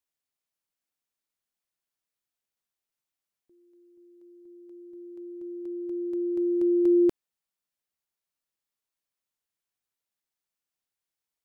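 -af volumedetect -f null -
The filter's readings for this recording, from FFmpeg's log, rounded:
mean_volume: -33.0 dB
max_volume: -16.2 dB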